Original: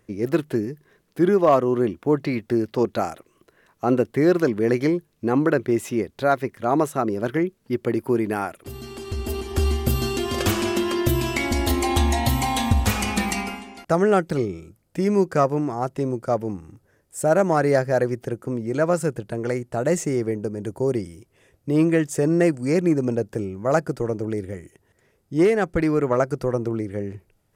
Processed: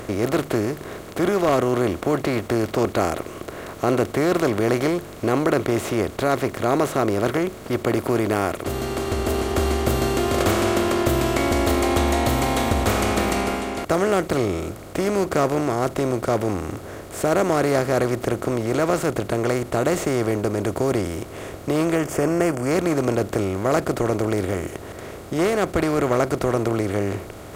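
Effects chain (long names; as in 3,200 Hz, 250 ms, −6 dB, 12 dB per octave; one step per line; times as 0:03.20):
compressor on every frequency bin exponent 0.4
0:21.95–0:22.71: parametric band 3,900 Hz −13.5 dB 0.33 octaves
level −6.5 dB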